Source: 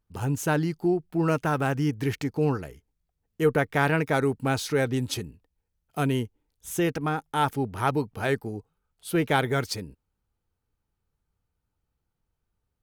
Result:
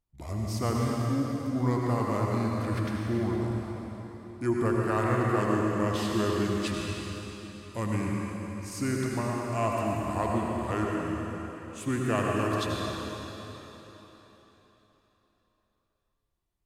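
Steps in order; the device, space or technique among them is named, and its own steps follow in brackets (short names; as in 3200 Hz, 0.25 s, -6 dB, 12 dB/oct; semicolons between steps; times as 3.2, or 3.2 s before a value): slowed and reverbed (varispeed -23%; reverb RT60 3.9 s, pre-delay 76 ms, DRR -2.5 dB); gain -6.5 dB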